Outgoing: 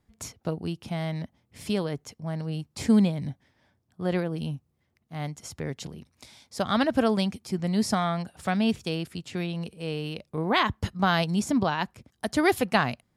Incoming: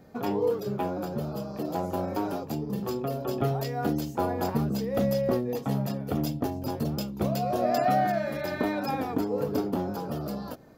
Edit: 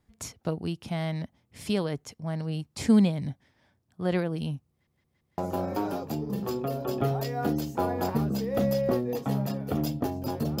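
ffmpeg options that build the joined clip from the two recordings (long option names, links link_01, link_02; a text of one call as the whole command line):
ffmpeg -i cue0.wav -i cue1.wav -filter_complex "[0:a]apad=whole_dur=10.6,atrim=end=10.6,asplit=4[link_01][link_02][link_03][link_04];[link_01]atrim=end=4.872[link_05];[link_02]atrim=start=4.698:end=4.872[link_06];[link_03]atrim=start=4.698:end=4.872[link_07];[link_04]atrim=start=4.698:end=4.872[link_08];[1:a]atrim=start=1.778:end=7[link_09];[link_05][link_06]acrossfade=duration=0.004:curve1=hsin:curve2=hsin[link_10];[link_10][link_07]acrossfade=duration=0.004:curve1=hsin:curve2=hsin[link_11];[link_11][link_08]acrossfade=duration=0.004:curve1=hsin:curve2=hsin[link_12];[link_12][link_09]acrossfade=duration=0.004:curve1=hsin:curve2=hsin" out.wav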